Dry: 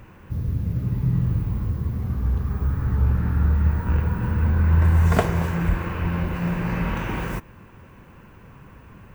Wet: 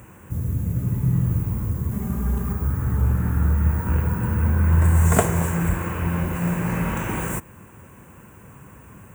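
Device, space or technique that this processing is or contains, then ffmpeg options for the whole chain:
budget condenser microphone: -filter_complex "[0:a]asettb=1/sr,asplit=3[s0][s1][s2];[s0]atrim=end=1.914[s3];[s1]atrim=start=1.91:end=2.53,asetpts=PTS-STARTPTS,afade=t=in:d=0.004:c=qsin,afade=t=out:st=0.616:d=0.004:c=qsin,aecho=1:1:5:0.97,atrim=end_sample=27342[s4];[s2]atrim=start=2.526[s5];[s3][s4]acrossfade=d=0.004:c1=hsin:c2=qsin[s6];[s6][s5]acrossfade=d=0.004:c1=qsin:c2=hsin,highpass=63,highshelf=f=6100:t=q:w=3:g=9.5,volume=1.19"

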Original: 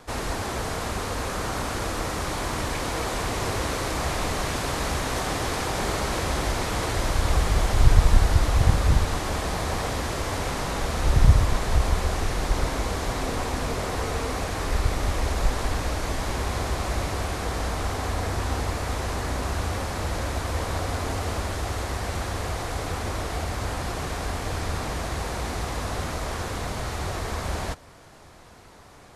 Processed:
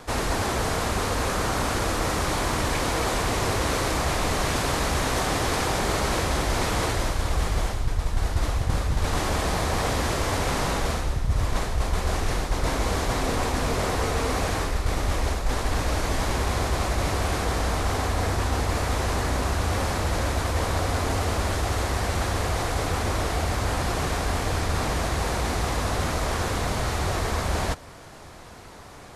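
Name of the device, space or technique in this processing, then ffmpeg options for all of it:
compression on the reversed sound: -af "areverse,acompressor=threshold=0.0562:ratio=8,areverse,volume=1.78"

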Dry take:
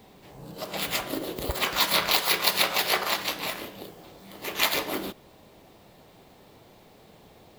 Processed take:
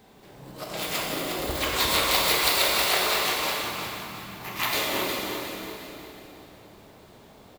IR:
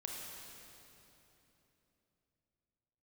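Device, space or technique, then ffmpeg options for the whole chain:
shimmer-style reverb: -filter_complex "[0:a]asplit=2[s0][s1];[s1]asetrate=88200,aresample=44100,atempo=0.5,volume=0.355[s2];[s0][s2]amix=inputs=2:normalize=0[s3];[1:a]atrim=start_sample=2205[s4];[s3][s4]afir=irnorm=-1:irlink=0,asettb=1/sr,asplit=3[s5][s6][s7];[s5]atrim=end=3.614[s8];[s6]atrim=start=3.61:end=4.73,asetpts=PTS-STARTPTS,afade=t=in:d=0.004:c=qsin,afade=t=out:st=1.116:d=0.004:c=qsin,equalizer=f=125:t=o:w=1:g=7,equalizer=f=500:t=o:w=1:g=-11,equalizer=f=1000:t=o:w=1:g=5,equalizer=f=4000:t=o:w=1:g=-4,equalizer=f=8000:t=o:w=1:g=-6[s9];[s7]atrim=start=4.726[s10];[s8][s9]acrossfade=d=0.004:c1=hsin:c2=qsin[s11];[s11][s10]acrossfade=d=0.004:c1=qsin:c2=hsin,aecho=1:1:359|718|1077|1436:0.422|0.164|0.0641|0.025,volume=1.19"

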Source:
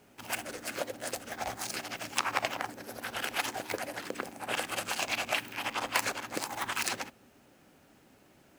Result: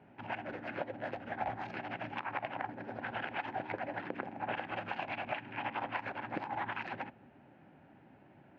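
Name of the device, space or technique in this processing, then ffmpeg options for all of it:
bass amplifier: -af "acompressor=threshold=0.0224:ratio=6,highpass=79,equalizer=f=110:t=q:w=4:g=3,equalizer=f=150:t=q:w=4:g=4,equalizer=f=460:t=q:w=4:g=-6,equalizer=f=850:t=q:w=4:g=4,equalizer=f=1200:t=q:w=4:g=-8,equalizer=f=2100:t=q:w=4:g=-3,lowpass=f=2300:w=0.5412,lowpass=f=2300:w=1.3066,volume=1.26"

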